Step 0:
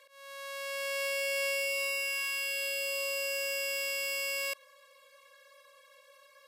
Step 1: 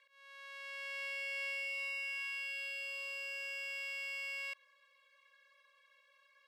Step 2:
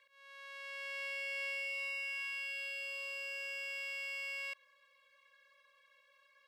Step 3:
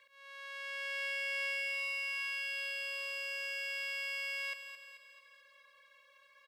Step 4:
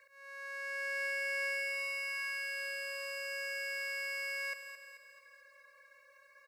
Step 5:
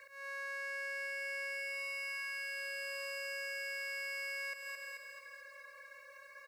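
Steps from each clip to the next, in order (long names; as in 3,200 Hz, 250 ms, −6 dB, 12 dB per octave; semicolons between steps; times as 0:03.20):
resonant band-pass 2,100 Hz, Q 1.2; level −5 dB
low-shelf EQ 280 Hz +10.5 dB
repeating echo 218 ms, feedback 50%, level −9.5 dB; level +4 dB
phaser with its sweep stopped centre 880 Hz, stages 6; level +5 dB
downward compressor 5 to 1, threshold −47 dBFS, peak gain reduction 12.5 dB; level +7 dB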